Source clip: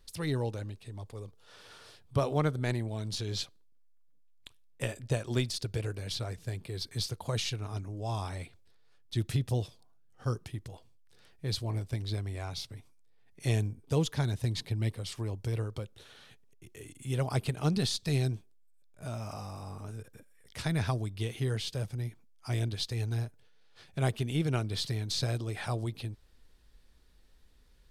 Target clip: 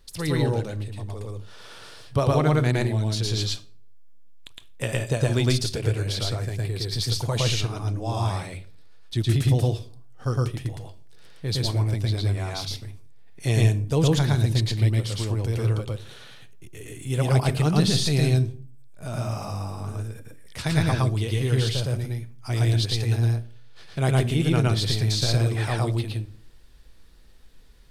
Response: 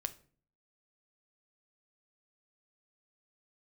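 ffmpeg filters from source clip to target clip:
-filter_complex "[0:a]asplit=2[a][b];[1:a]atrim=start_sample=2205,adelay=112[c];[b][c]afir=irnorm=-1:irlink=0,volume=1.5dB[d];[a][d]amix=inputs=2:normalize=0,volume=5.5dB"

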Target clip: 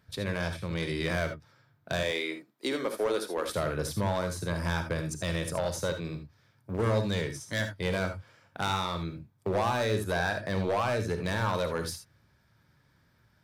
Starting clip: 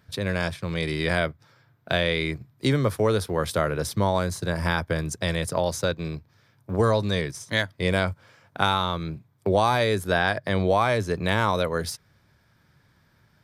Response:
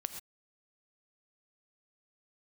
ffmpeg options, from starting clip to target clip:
-filter_complex "[0:a]asettb=1/sr,asplit=3[a][b][c];[a]atrim=end=2.034[d];[b]atrim=start=2.03:end=3.49,asetpts=PTS-STARTPTS,afade=t=in:d=0.004:c=qsin,afade=t=out:st=1.456:d=0.004:c=qsin,highpass=f=280:w=0.5412,highpass=f=280:w=1.3066[e];[c]atrim=start=3.486[f];[d][e]acrossfade=d=0.004:c1=hsin:c2=qsin[g];[g][f]acrossfade=d=0.004:c1=qsin:c2=hsin,volume=18dB,asoftclip=hard,volume=-18dB[h];[1:a]atrim=start_sample=2205,asetrate=70560,aresample=44100[i];[h][i]afir=irnorm=-1:irlink=0"

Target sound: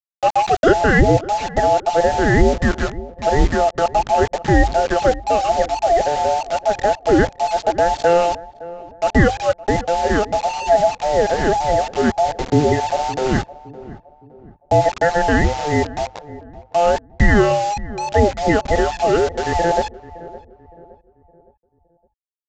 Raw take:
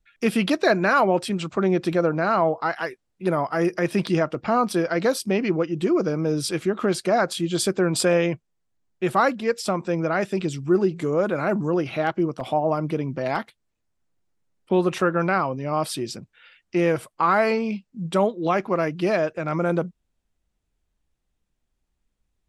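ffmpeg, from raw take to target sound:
-filter_complex "[0:a]afftfilt=real='real(if(between(b,1,1008),(2*floor((b-1)/48)+1)*48-b,b),0)':imag='imag(if(between(b,1,1008),(2*floor((b-1)/48)+1)*48-b,b),0)*if(between(b,1,1008),-1,1)':win_size=2048:overlap=0.75,aemphasis=mode=reproduction:type=riaa,anlmdn=10,equalizer=f=1.1k:t=o:w=1.2:g=4,bandreject=f=50:t=h:w=6,bandreject=f=100:t=h:w=6,acrusher=bits=4:mix=0:aa=0.000001,asplit=2[a][b];[b]adelay=564,lowpass=f=890:p=1,volume=-16.5dB,asplit=2[c][d];[d]adelay=564,lowpass=f=890:p=1,volume=0.45,asplit=2[e][f];[f]adelay=564,lowpass=f=890:p=1,volume=0.45,asplit=2[g][h];[h]adelay=564,lowpass=f=890:p=1,volume=0.45[i];[c][e][g][i]amix=inputs=4:normalize=0[j];[a][j]amix=inputs=2:normalize=0,aresample=16000,aresample=44100,alimiter=level_in=3dB:limit=-1dB:release=50:level=0:latency=1,volume=-1dB"

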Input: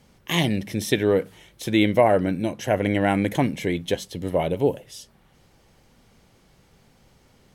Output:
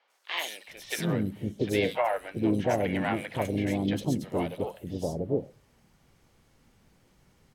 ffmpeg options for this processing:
-filter_complex "[0:a]acrossover=split=580|3900[a][b][c];[c]adelay=100[d];[a]adelay=690[e];[e][b][d]amix=inputs=3:normalize=0,asplit=4[f][g][h][i];[g]asetrate=35002,aresample=44100,atempo=1.25992,volume=-16dB[j];[h]asetrate=55563,aresample=44100,atempo=0.793701,volume=-11dB[k];[i]asetrate=66075,aresample=44100,atempo=0.66742,volume=-18dB[l];[f][j][k][l]amix=inputs=4:normalize=0,volume=-5.5dB"

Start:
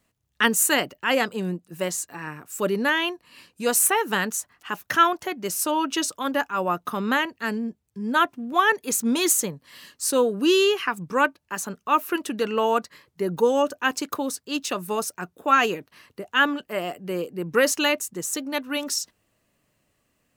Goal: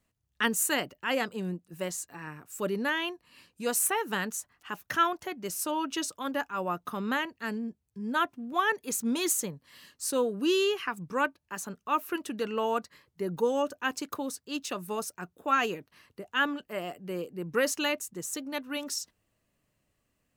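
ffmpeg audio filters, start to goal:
-af "lowshelf=f=110:g=7,volume=-7.5dB"

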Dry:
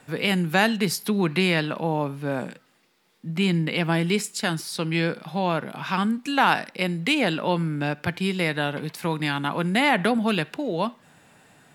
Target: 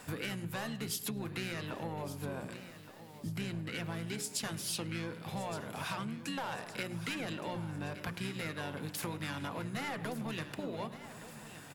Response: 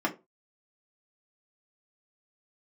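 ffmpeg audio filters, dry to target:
-filter_complex "[0:a]bandreject=f=60:t=h:w=6,bandreject=f=120:t=h:w=6,bandreject=f=180:t=h:w=6,bandreject=f=240:t=h:w=6,bandreject=f=300:t=h:w=6,bandreject=f=360:t=h:w=6,bandreject=f=420:t=h:w=6,bandreject=f=480:t=h:w=6,bandreject=f=540:t=h:w=6,bandreject=f=600:t=h:w=6,asoftclip=type=tanh:threshold=-17.5dB,asplit=2[a][b];[b]asetrate=29433,aresample=44100,atempo=1.49831,volume=-5dB[c];[a][c]amix=inputs=2:normalize=0,asplit=2[d][e];[e]adelay=104,lowpass=f=4.5k:p=1,volume=-19dB,asplit=2[f][g];[g]adelay=104,lowpass=f=4.5k:p=1,volume=0.49,asplit=2[h][i];[i]adelay=104,lowpass=f=4.5k:p=1,volume=0.49,asplit=2[j][k];[k]adelay=104,lowpass=f=4.5k:p=1,volume=0.49[l];[f][h][j][l]amix=inputs=4:normalize=0[m];[d][m]amix=inputs=2:normalize=0,acompressor=threshold=-37dB:ratio=8,asplit=2[n][o];[o]aecho=0:1:1168|2336|3504|4672|5840:0.2|0.0978|0.0479|0.0235|0.0115[p];[n][p]amix=inputs=2:normalize=0,crystalizer=i=1:c=0"

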